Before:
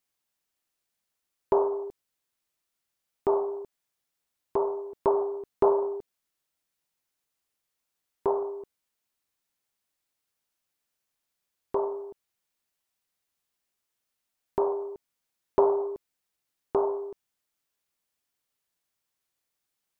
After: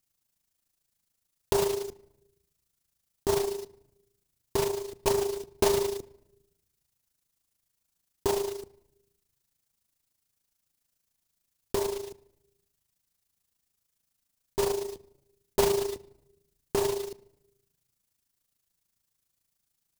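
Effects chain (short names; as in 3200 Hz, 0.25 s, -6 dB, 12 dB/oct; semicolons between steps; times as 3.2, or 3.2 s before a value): block floating point 3-bit; on a send at -17 dB: reverb RT60 0.85 s, pre-delay 6 ms; on the sum: AM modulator 27 Hz, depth 50%; in parallel at -6 dB: wavefolder -26 dBFS; on the sum: tone controls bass +12 dB, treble +7 dB; gain -2.5 dB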